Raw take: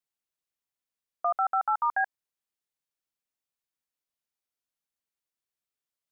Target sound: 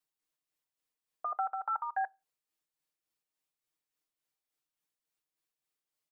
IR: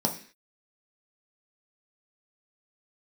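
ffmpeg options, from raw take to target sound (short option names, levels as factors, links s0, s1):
-filter_complex "[0:a]aecho=1:1:6.5:0.93,acompressor=threshold=0.0631:ratio=6,alimiter=limit=0.0708:level=0:latency=1:release=496,tremolo=f=3.5:d=0.49,asplit=2[s0][s1];[1:a]atrim=start_sample=2205,asetrate=61740,aresample=44100[s2];[s1][s2]afir=irnorm=-1:irlink=0,volume=0.0501[s3];[s0][s3]amix=inputs=2:normalize=0"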